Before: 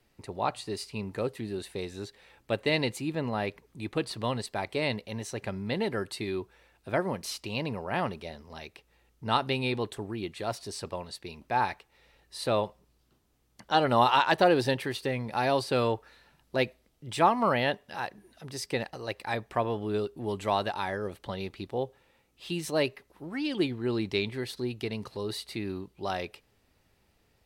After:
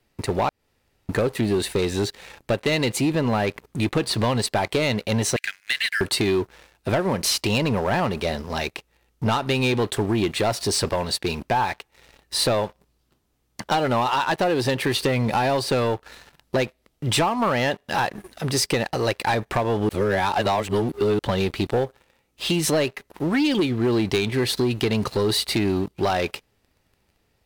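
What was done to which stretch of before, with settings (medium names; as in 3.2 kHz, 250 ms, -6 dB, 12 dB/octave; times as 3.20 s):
0.49–1.09 s: room tone
5.36–6.01 s: steep high-pass 1.5 kHz 96 dB/octave
19.89–21.19 s: reverse
whole clip: compression 16:1, threshold -33 dBFS; waveshaping leveller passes 3; trim +6.5 dB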